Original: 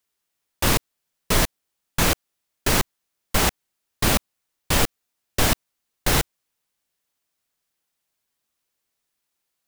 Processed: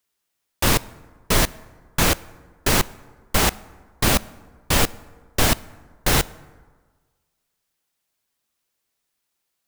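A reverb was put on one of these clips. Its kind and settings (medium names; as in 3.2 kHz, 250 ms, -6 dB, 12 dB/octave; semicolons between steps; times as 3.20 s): plate-style reverb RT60 1.5 s, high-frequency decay 0.5×, DRR 19.5 dB; trim +1.5 dB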